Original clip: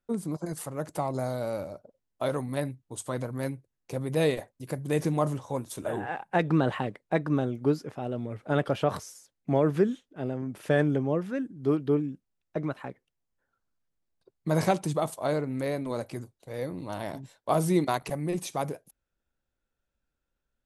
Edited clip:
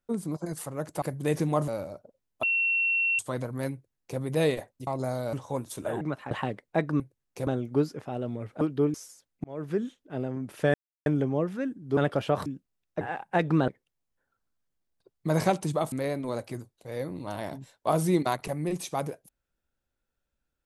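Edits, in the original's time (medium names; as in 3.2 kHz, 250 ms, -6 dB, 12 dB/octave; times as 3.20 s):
1.02–1.48 s: swap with 4.67–5.33 s
2.23–2.99 s: bleep 2.72 kHz -22.5 dBFS
3.53–4.00 s: copy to 7.37 s
6.01–6.68 s: swap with 12.59–12.89 s
8.51–9.00 s: swap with 11.71–12.04 s
9.50–10.07 s: fade in
10.80 s: insert silence 0.32 s
15.13–15.54 s: delete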